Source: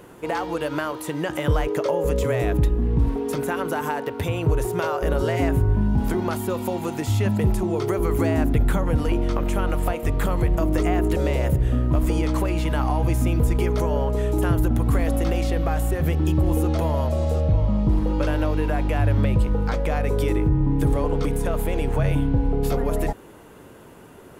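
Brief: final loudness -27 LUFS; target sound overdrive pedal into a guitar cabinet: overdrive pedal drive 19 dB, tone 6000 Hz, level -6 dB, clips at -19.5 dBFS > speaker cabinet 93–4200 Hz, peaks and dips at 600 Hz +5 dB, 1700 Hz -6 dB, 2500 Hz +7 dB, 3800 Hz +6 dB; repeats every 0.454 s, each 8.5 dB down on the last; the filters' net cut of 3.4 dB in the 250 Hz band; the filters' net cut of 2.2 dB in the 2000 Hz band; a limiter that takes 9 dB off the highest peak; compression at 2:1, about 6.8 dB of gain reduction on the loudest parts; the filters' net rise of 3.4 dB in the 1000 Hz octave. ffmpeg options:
-filter_complex "[0:a]equalizer=f=250:t=o:g=-5,equalizer=f=1k:t=o:g=5,equalizer=f=2k:t=o:g=-5,acompressor=threshold=-28dB:ratio=2,alimiter=limit=-23.5dB:level=0:latency=1,aecho=1:1:454|908|1362|1816:0.376|0.143|0.0543|0.0206,asplit=2[a][b];[b]highpass=f=720:p=1,volume=19dB,asoftclip=type=tanh:threshold=-19.5dB[c];[a][c]amix=inputs=2:normalize=0,lowpass=f=6k:p=1,volume=-6dB,highpass=93,equalizer=f=600:t=q:w=4:g=5,equalizer=f=1.7k:t=q:w=4:g=-6,equalizer=f=2.5k:t=q:w=4:g=7,equalizer=f=3.8k:t=q:w=4:g=6,lowpass=f=4.2k:w=0.5412,lowpass=f=4.2k:w=1.3066,volume=1dB"

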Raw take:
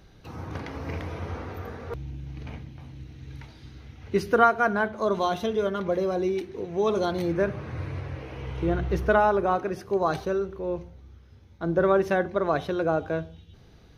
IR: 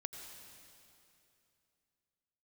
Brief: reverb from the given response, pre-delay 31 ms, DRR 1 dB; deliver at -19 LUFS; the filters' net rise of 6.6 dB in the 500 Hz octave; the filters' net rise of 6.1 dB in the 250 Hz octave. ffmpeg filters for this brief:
-filter_complex "[0:a]equalizer=f=250:t=o:g=6.5,equalizer=f=500:t=o:g=6.5,asplit=2[a][b];[1:a]atrim=start_sample=2205,adelay=31[c];[b][c]afir=irnorm=-1:irlink=0,volume=1dB[d];[a][d]amix=inputs=2:normalize=0,volume=-0.5dB"

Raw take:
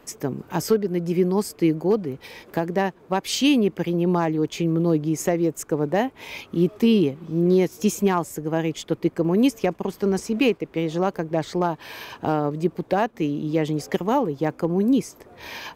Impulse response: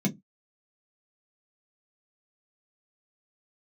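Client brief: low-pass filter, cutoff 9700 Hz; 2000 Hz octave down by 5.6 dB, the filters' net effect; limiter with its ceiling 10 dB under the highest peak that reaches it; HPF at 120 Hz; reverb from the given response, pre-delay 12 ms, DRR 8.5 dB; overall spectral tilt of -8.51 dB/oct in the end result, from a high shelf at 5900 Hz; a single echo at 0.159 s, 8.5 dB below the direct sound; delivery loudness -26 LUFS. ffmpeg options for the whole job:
-filter_complex "[0:a]highpass=120,lowpass=9.7k,equalizer=f=2k:t=o:g=-8,highshelf=f=5.9k:g=3,alimiter=limit=-19dB:level=0:latency=1,aecho=1:1:159:0.376,asplit=2[a][b];[1:a]atrim=start_sample=2205,adelay=12[c];[b][c]afir=irnorm=-1:irlink=0,volume=-14dB[d];[a][d]amix=inputs=2:normalize=0,volume=-6dB"

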